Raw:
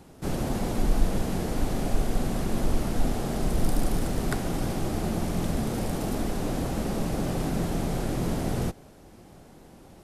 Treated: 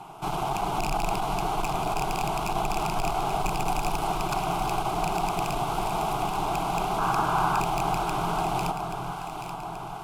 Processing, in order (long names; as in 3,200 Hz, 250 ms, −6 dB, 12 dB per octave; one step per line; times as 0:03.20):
loose part that buzzes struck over −23 dBFS, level −16 dBFS
flat-topped bell 1,400 Hz +16 dB 2.6 octaves
in parallel at +3 dB: brickwall limiter −20.5 dBFS, peak gain reduction 19 dB
on the sum: asymmetric clip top −23 dBFS, bottom −9 dBFS
sound drawn into the spectrogram noise, 0:06.98–0:07.61, 750–1,700 Hz −18 dBFS
phaser with its sweep stopped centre 360 Hz, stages 8
on a send: delay that swaps between a low-pass and a high-pass 415 ms, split 1,000 Hz, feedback 76%, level −6 dB
on the sum: level −5.5 dB